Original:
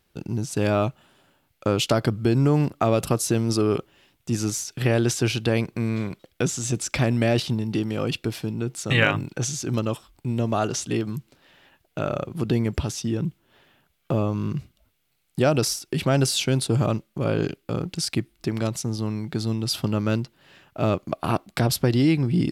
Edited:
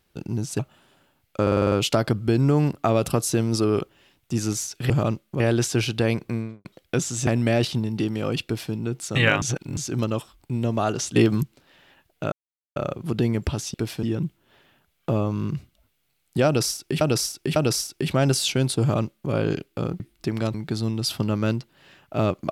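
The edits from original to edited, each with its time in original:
0.59–0.86 s: delete
1.69 s: stutter 0.05 s, 7 plays
5.72–6.12 s: studio fade out
6.74–7.02 s: delete
8.19–8.48 s: copy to 13.05 s
9.17–9.52 s: reverse
10.91–11.18 s: gain +7.5 dB
12.07 s: insert silence 0.44 s
15.48–16.03 s: loop, 3 plays
16.73–17.23 s: copy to 4.87 s
17.92–18.20 s: delete
18.74–19.18 s: delete

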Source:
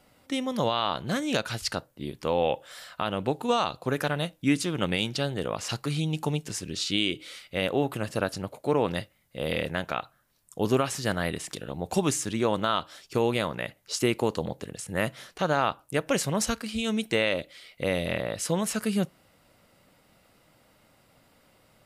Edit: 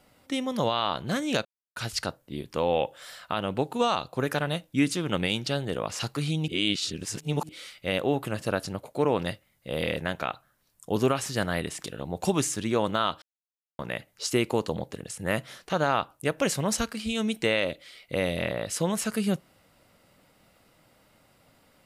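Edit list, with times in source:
1.45 s: insert silence 0.31 s
6.17–7.18 s: reverse
12.91–13.48 s: mute

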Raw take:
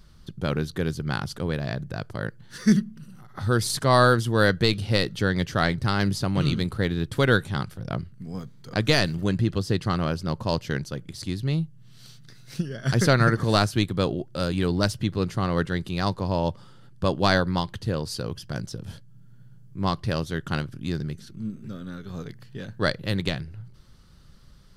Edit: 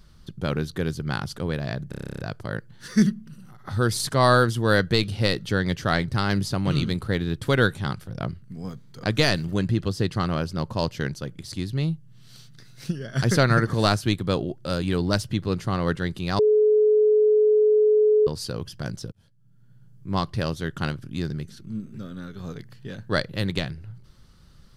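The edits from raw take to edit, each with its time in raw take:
1.89 s: stutter 0.03 s, 11 plays
16.09–17.97 s: bleep 426 Hz -14.5 dBFS
18.82–19.79 s: fade in

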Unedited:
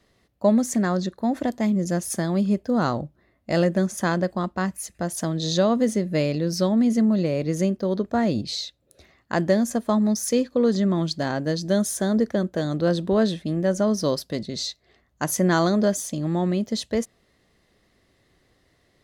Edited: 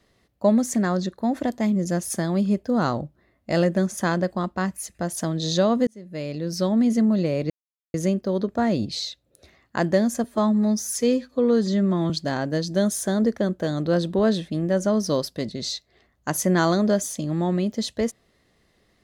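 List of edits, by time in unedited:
5.87–6.77 s: fade in
7.50 s: insert silence 0.44 s
9.80–11.04 s: stretch 1.5×

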